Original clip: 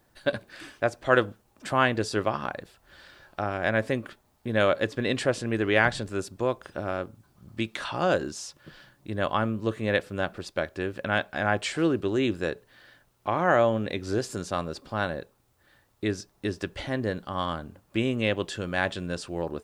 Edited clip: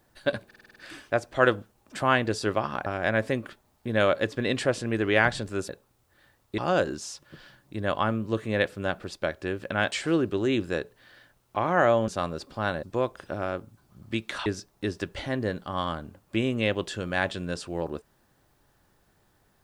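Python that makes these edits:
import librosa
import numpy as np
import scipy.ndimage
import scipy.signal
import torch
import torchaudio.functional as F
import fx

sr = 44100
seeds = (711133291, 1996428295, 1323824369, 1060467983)

y = fx.edit(x, sr, fx.stutter(start_s=0.46, slice_s=0.05, count=7),
    fx.cut(start_s=2.56, length_s=0.9),
    fx.swap(start_s=6.29, length_s=1.63, other_s=15.18, other_length_s=0.89),
    fx.cut(start_s=11.26, length_s=0.37),
    fx.cut(start_s=13.79, length_s=0.64), tone=tone)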